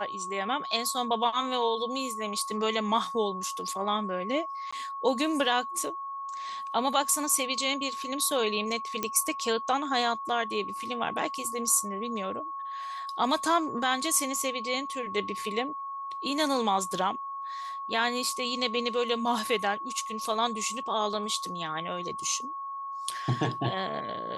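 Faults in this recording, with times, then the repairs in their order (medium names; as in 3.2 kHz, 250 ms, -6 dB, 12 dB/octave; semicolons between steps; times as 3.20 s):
whine 1.1 kHz -34 dBFS
4.71–4.72 s: dropout 15 ms
9.03 s: pop -14 dBFS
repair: de-click; band-stop 1.1 kHz, Q 30; interpolate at 4.71 s, 15 ms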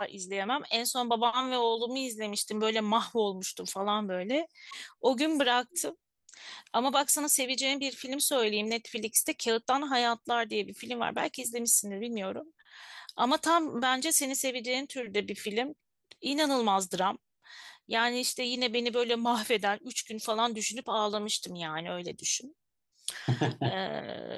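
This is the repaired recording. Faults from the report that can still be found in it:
nothing left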